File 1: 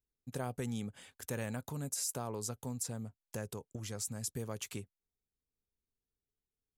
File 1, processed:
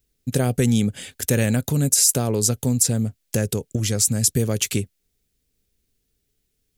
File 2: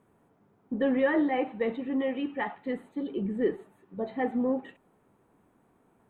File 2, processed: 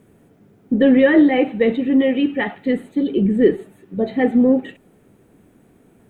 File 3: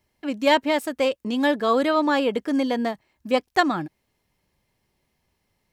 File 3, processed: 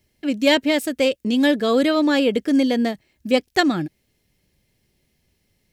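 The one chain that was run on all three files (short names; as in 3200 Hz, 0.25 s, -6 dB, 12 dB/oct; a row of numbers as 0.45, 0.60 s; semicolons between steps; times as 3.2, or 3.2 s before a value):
bell 1000 Hz -13.5 dB 1.1 oct; normalise peaks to -3 dBFS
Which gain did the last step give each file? +20.5, +15.0, +6.5 dB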